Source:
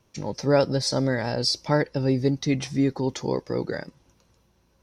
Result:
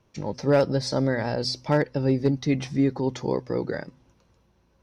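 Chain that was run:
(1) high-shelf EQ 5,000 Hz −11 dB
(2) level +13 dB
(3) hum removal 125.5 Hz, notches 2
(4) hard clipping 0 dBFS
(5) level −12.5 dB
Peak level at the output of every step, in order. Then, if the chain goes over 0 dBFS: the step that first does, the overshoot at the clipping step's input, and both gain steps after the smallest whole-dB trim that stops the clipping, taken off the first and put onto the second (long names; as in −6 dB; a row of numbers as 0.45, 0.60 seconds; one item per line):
−9.5, +3.5, +4.0, 0.0, −12.5 dBFS
step 2, 4.0 dB
step 2 +9 dB, step 5 −8.5 dB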